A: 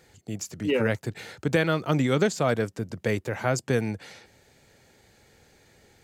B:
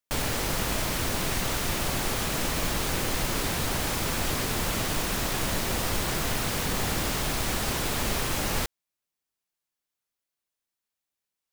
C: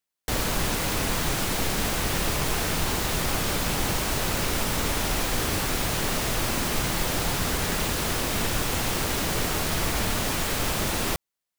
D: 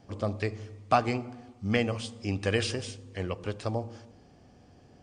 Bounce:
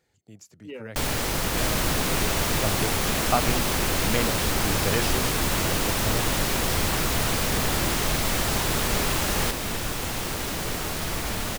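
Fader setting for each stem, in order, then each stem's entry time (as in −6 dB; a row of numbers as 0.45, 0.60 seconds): −14.0, +2.0, −3.0, −0.5 decibels; 0.00, 0.85, 1.30, 2.40 seconds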